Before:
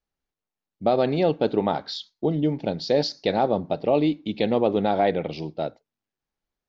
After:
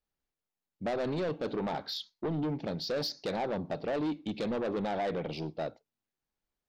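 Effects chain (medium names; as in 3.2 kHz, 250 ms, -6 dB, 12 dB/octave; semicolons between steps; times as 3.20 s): in parallel at -1.5 dB: peak limiter -17.5 dBFS, peak gain reduction 8 dB; on the sum: saturation -19.5 dBFS, distortion -8 dB; trim -8.5 dB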